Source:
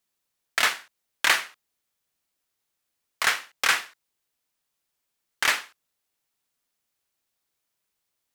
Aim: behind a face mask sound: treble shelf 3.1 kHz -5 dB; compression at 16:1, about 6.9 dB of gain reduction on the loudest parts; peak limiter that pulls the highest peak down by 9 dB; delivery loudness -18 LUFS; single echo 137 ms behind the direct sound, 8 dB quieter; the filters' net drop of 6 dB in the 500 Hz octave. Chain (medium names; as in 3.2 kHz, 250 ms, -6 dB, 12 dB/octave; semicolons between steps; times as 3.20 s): peaking EQ 500 Hz -8 dB; compression 16:1, threshold -23 dBFS; peak limiter -17.5 dBFS; treble shelf 3.1 kHz -5 dB; delay 137 ms -8 dB; trim +17.5 dB